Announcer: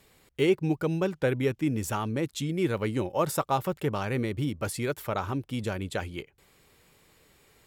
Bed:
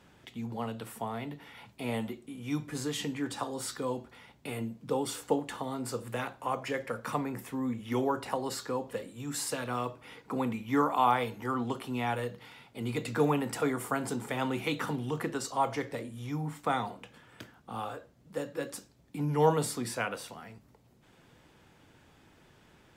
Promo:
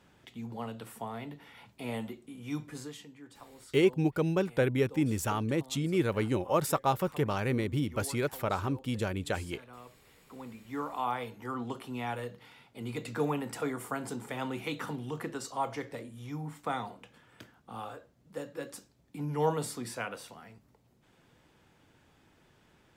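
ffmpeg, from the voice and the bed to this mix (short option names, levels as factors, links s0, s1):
-filter_complex "[0:a]adelay=3350,volume=0.891[s0];[1:a]volume=3.16,afade=t=out:st=2.59:d=0.46:silence=0.199526,afade=t=in:st=10.26:d=1.41:silence=0.223872[s1];[s0][s1]amix=inputs=2:normalize=0"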